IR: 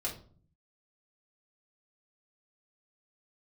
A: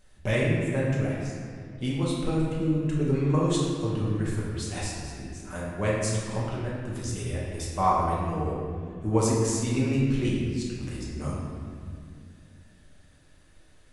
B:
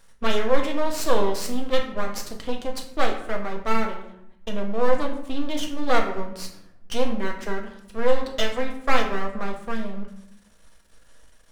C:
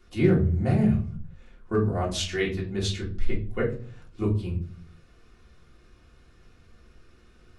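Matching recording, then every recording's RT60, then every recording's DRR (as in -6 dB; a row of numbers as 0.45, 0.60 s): C; 2.1, 0.75, 0.45 s; -6.0, 1.0, -5.0 dB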